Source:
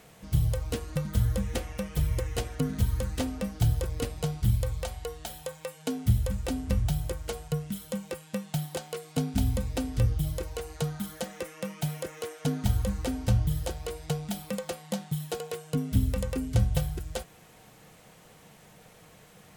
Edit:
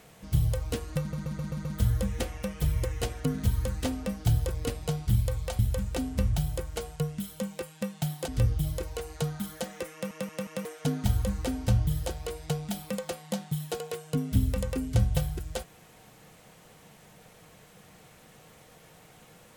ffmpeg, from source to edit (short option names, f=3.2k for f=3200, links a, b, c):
-filter_complex "[0:a]asplit=12[a][b][c][d][e][f][g][h][i][j][k][l];[a]atrim=end=1.132[m];[b]atrim=start=0.998:end=1.132[n];[c]atrim=start=0.998:end=1.132[o];[d]atrim=start=0.998:end=1.132[p];[e]atrim=start=0.998:end=1.132[q];[f]atrim=start=0.998:end=4.942[r];[g]atrim=start=6.108:end=8.802[s];[h]atrim=start=9.878:end=11.712[t];[i]atrim=start=11.528:end=11.712[u];[j]atrim=start=11.528:end=11.712[v];[k]atrim=start=11.528:end=11.712[w];[l]atrim=start=12.248[x];[m][n]acrossfade=d=0.004:c1=hsin:c2=hsin[y];[y][o]acrossfade=d=0.004:c1=hsin:c2=hsin[z];[z][p]acrossfade=d=0.004:c1=hsin:c2=hsin[aa];[aa][q]acrossfade=d=0.004:c1=hsin:c2=hsin[ab];[ab][r]acrossfade=d=0.004:c1=hsin:c2=hsin[ac];[ac][s]acrossfade=d=0.004:c1=hsin:c2=hsin[ad];[ad][t]acrossfade=d=0.004:c1=hsin:c2=hsin[ae];[ae][u]acrossfade=d=0.004:c1=hsin:c2=hsin[af];[af][v]acrossfade=d=0.004:c1=hsin:c2=hsin[ag];[ag][w]acrossfade=d=0.004:c1=hsin:c2=hsin[ah];[ah][x]acrossfade=d=0.004:c1=hsin:c2=hsin"